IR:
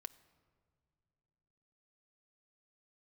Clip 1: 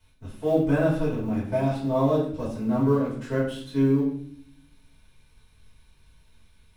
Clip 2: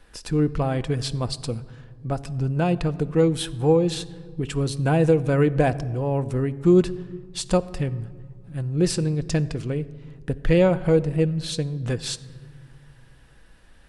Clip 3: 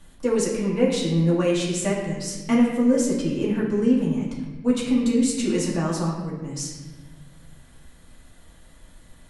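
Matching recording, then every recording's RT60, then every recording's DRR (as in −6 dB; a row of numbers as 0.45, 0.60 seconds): 2; 0.60 s, non-exponential decay, 1.2 s; −10.5, 11.0, −5.0 decibels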